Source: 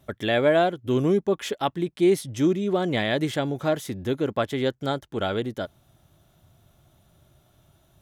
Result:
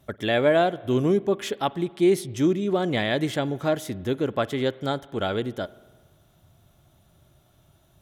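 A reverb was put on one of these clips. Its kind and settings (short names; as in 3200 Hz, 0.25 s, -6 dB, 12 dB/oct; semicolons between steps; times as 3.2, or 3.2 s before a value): spring tank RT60 1.4 s, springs 48 ms, chirp 65 ms, DRR 19.5 dB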